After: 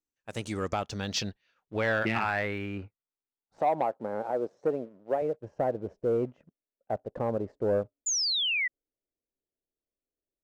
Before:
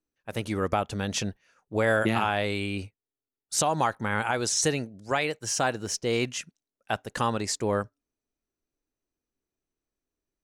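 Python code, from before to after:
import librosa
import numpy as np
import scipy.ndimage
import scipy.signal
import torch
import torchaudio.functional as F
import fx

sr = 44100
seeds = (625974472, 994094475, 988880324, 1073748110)

y = fx.filter_sweep_lowpass(x, sr, from_hz=7500.0, to_hz=580.0, start_s=0.56, end_s=4.0, q=2.6)
y = fx.leveller(y, sr, passes=1)
y = fx.highpass(y, sr, hz=240.0, slope=12, at=(3.58, 5.22))
y = fx.spec_paint(y, sr, seeds[0], shape='fall', start_s=8.06, length_s=0.62, low_hz=1900.0, high_hz=7200.0, level_db=-20.0)
y = y * librosa.db_to_amplitude(-8.0)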